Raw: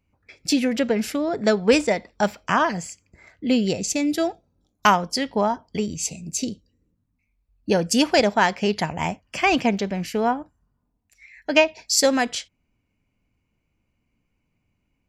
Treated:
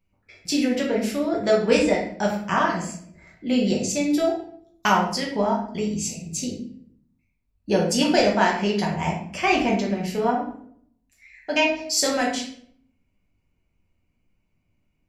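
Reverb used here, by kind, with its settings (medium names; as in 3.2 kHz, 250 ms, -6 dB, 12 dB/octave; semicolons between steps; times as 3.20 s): simulated room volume 92 m³, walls mixed, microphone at 1.1 m; trim -5.5 dB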